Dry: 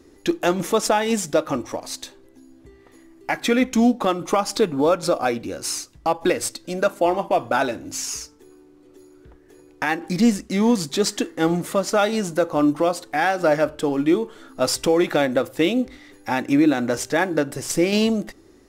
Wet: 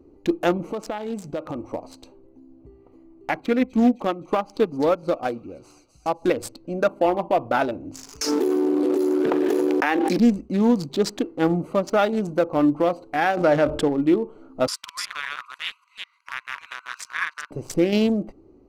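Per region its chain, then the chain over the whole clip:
0:00.57–0:01.65: dynamic equaliser 2,100 Hz, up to +5 dB, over −37 dBFS, Q 1.2 + downward compressor 3 to 1, threshold −26 dBFS
0:03.41–0:06.28: delay with a high-pass on its return 258 ms, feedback 53%, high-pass 2,900 Hz, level −5 dB + expander for the loud parts, over −28 dBFS
0:08.21–0:10.18: high-pass filter 260 Hz 24 dB per octave + envelope flattener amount 100%
0:13.37–0:13.88: low-pass filter 11,000 Hz 24 dB per octave + envelope flattener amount 50%
0:14.67–0:17.51: delay that plays each chunk backwards 196 ms, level −1 dB + linear-phase brick-wall band-pass 930–12,000 Hz + one half of a high-frequency compander encoder only
whole clip: adaptive Wiener filter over 25 samples; dynamic equaliser 8,200 Hz, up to −7 dB, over −46 dBFS, Q 0.79

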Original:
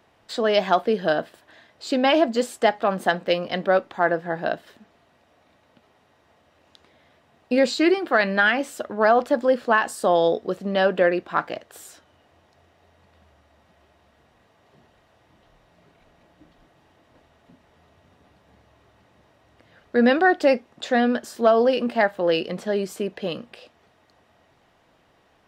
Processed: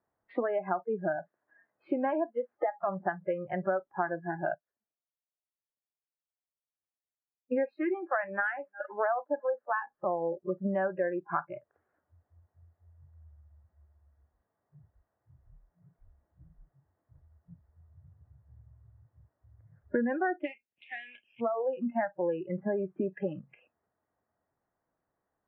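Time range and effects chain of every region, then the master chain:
0:01.16–0:02.84: variable-slope delta modulation 64 kbit/s + Bessel high-pass filter 160 Hz
0:04.54–0:09.80: bass and treble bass −10 dB, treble +2 dB + single-tap delay 361 ms −23 dB + multiband upward and downward expander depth 70%
0:20.43–0:21.40: compressing power law on the bin magnitudes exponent 0.61 + high shelf with overshoot 1,900 Hz +13.5 dB, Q 3
whole clip: downward compressor 10 to 1, threshold −33 dBFS; Butterworth low-pass 1,800 Hz 36 dB per octave; noise reduction from a noise print of the clip's start 29 dB; level +6.5 dB

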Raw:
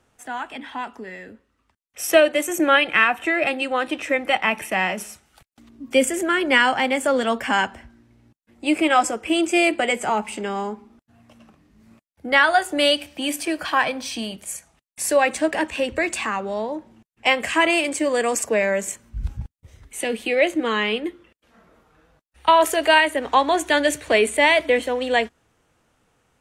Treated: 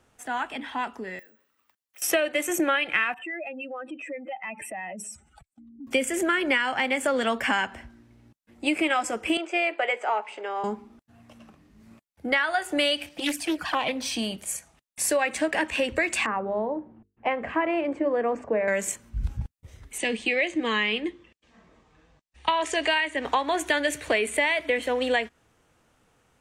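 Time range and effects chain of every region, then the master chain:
0:01.19–0:02.02: downward compressor, threshold −49 dBFS + high-pass filter 880 Hz 6 dB per octave + bad sample-rate conversion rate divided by 2×, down none, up zero stuff
0:03.14–0:05.87: expanding power law on the bin magnitudes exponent 2.2 + parametric band 7,900 Hz +14 dB 0.33 octaves + downward compressor 2.5 to 1, threshold −39 dBFS
0:09.37–0:10.64: high-pass filter 460 Hz 24 dB per octave + head-to-tape spacing loss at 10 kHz 25 dB
0:13.09–0:14.01: flanger swept by the level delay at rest 7.2 ms, full sweep at −19.5 dBFS + highs frequency-modulated by the lows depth 0.25 ms
0:16.26–0:18.68: low-pass filter 1,100 Hz + mains-hum notches 50/100/150/200/250/300/350/400/450 Hz
0:19.98–0:23.25: Butterworth low-pass 8,300 Hz + parametric band 570 Hz −4.5 dB 1.4 octaves + notch filter 1,400 Hz, Q 5
whole clip: dynamic equaliser 2,100 Hz, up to +5 dB, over −33 dBFS, Q 1.2; downward compressor 6 to 1, threshold −21 dBFS

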